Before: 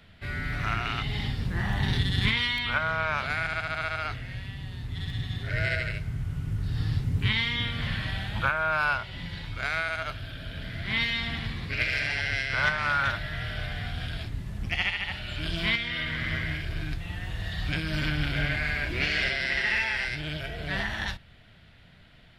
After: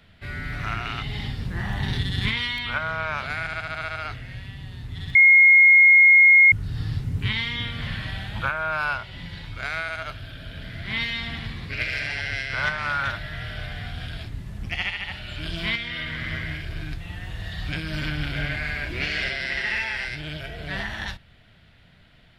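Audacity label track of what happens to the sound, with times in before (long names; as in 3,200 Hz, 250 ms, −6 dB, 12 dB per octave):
5.150000	6.520000	beep over 2,150 Hz −9.5 dBFS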